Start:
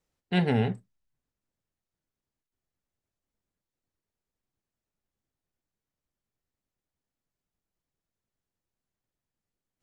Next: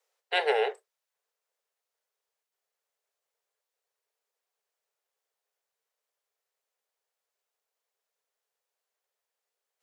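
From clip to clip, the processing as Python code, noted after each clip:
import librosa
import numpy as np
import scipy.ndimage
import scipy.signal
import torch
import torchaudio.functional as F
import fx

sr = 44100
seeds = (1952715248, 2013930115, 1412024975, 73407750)

y = scipy.signal.sosfilt(scipy.signal.butter(16, 410.0, 'highpass', fs=sr, output='sos'), x)
y = y * librosa.db_to_amplitude(5.0)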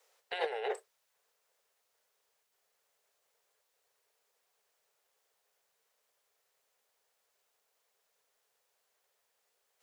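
y = fx.over_compress(x, sr, threshold_db=-36.0, ratio=-1.0)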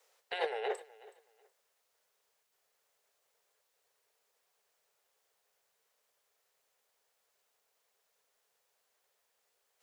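y = fx.echo_feedback(x, sr, ms=372, feedback_pct=22, wet_db=-20.5)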